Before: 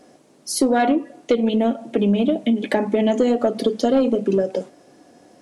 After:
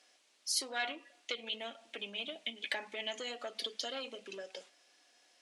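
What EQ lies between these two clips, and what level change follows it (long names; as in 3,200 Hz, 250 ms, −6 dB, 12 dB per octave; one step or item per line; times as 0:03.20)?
resonant band-pass 3,000 Hz, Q 1.1
spectral tilt +2.5 dB per octave
−7.0 dB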